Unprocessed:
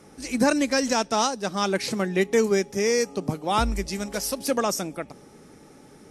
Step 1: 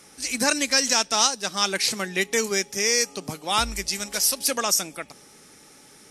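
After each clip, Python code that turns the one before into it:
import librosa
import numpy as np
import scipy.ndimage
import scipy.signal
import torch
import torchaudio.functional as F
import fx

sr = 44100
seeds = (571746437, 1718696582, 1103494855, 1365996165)

y = fx.tilt_shelf(x, sr, db=-8.5, hz=1300.0)
y = y * librosa.db_to_amplitude(1.0)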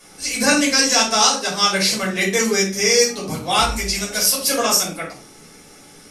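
y = fx.room_shoebox(x, sr, seeds[0], volume_m3=270.0, walls='furnished', distance_m=5.4)
y = y * librosa.db_to_amplitude(-3.0)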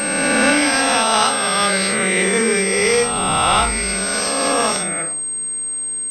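y = fx.spec_swells(x, sr, rise_s=2.42)
y = fx.pwm(y, sr, carrier_hz=8400.0)
y = y * librosa.db_to_amplitude(-2.0)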